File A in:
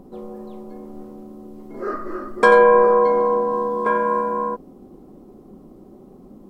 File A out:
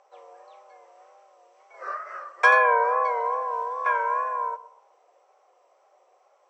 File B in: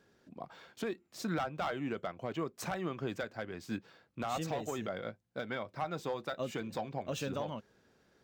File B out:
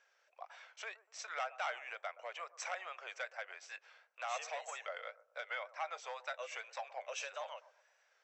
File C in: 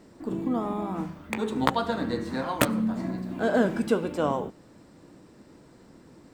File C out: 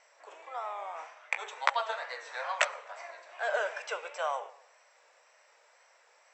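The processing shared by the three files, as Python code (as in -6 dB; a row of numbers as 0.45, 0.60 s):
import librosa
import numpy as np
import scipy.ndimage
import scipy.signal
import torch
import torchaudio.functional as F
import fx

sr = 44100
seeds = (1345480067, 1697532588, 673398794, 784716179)

p1 = scipy.signal.sosfilt(scipy.signal.butter(8, 550.0, 'highpass', fs=sr, output='sos'), x)
p2 = fx.wow_flutter(p1, sr, seeds[0], rate_hz=2.1, depth_cents=83.0)
p3 = scipy.signal.sosfilt(scipy.signal.cheby1(6, 9, 7900.0, 'lowpass', fs=sr, output='sos'), p2)
p4 = p3 + fx.echo_bbd(p3, sr, ms=122, stages=1024, feedback_pct=33, wet_db=-17.0, dry=0)
y = p4 * 10.0 ** (4.0 / 20.0)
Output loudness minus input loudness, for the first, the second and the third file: -6.0, -5.0, -6.5 LU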